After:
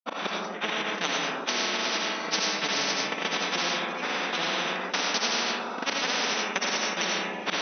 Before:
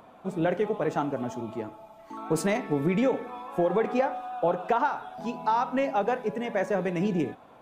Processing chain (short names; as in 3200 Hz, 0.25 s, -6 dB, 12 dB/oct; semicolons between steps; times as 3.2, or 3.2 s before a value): recorder AGC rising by 59 dB/s; tilt +3 dB/oct; harmonic-percussive split percussive -5 dB; dynamic EQ 530 Hz, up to +5 dB, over -41 dBFS, Q 0.96; echo with dull and thin repeats by turns 0.106 s, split 850 Hz, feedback 85%, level -10 dB; auto swell 0.159 s; step gate ".xx...x." 141 bpm -24 dB; grains, grains 20/s, spray 80 ms, pitch spread up and down by 0 st; brick-wall FIR band-pass 180–6200 Hz; reverb RT60 0.55 s, pre-delay 45 ms, DRR -3 dB; spectral compressor 10:1; gain -2 dB